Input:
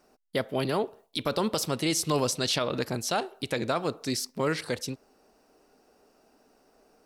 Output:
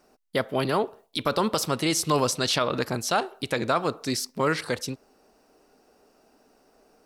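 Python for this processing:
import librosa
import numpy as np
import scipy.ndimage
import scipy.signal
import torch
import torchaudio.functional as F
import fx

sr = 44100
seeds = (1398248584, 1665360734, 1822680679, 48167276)

y = fx.dynamic_eq(x, sr, hz=1200.0, q=1.3, threshold_db=-44.0, ratio=4.0, max_db=5)
y = y * 10.0 ** (2.0 / 20.0)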